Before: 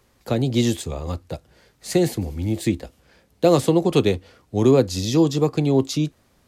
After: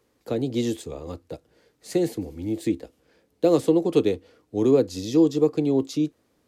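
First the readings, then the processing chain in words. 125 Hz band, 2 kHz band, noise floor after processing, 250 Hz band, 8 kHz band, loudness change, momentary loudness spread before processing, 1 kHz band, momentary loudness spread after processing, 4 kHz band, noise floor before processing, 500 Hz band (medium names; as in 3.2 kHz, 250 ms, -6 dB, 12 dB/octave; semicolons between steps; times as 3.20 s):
-10.0 dB, -8.5 dB, -69 dBFS, -2.0 dB, -8.5 dB, -2.5 dB, 13 LU, -7.5 dB, 14 LU, -8.5 dB, -61 dBFS, -2.0 dB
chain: bass shelf 64 Hz -10 dB; small resonant body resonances 310/450 Hz, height 10 dB, ringing for 40 ms; trim -8.5 dB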